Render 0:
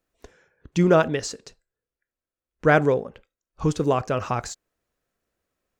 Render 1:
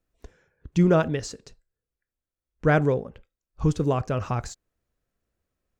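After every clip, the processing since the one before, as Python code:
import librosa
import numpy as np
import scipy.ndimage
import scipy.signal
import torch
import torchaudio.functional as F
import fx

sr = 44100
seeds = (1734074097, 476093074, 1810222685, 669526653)

y = fx.low_shelf(x, sr, hz=180.0, db=12.0)
y = y * librosa.db_to_amplitude(-5.0)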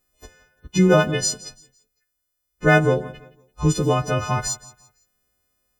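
y = fx.freq_snap(x, sr, grid_st=3)
y = fx.echo_feedback(y, sr, ms=169, feedback_pct=33, wet_db=-19)
y = y * librosa.db_to_amplitude(4.0)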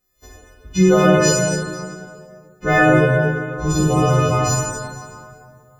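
y = fx.rev_plate(x, sr, seeds[0], rt60_s=2.3, hf_ratio=0.6, predelay_ms=0, drr_db=-7.5)
y = y * librosa.db_to_amplitude(-3.5)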